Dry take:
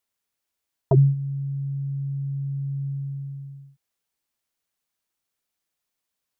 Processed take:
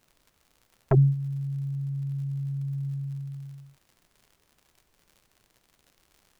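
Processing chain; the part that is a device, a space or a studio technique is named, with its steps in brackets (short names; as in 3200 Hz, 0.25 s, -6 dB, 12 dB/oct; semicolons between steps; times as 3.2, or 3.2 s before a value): record under a worn stylus (tracing distortion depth 0.22 ms; crackle 100/s -43 dBFS; pink noise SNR 39 dB); gain -2.5 dB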